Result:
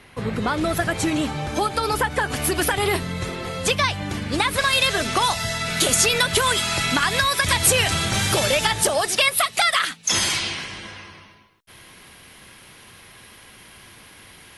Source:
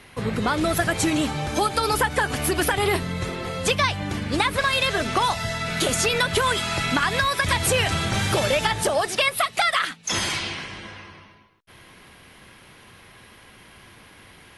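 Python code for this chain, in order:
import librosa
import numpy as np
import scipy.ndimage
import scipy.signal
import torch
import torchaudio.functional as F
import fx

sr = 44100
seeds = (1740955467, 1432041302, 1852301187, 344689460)

y = fx.high_shelf(x, sr, hz=3600.0, db=fx.steps((0.0, -3.0), (2.3, 3.0), (4.47, 8.5)))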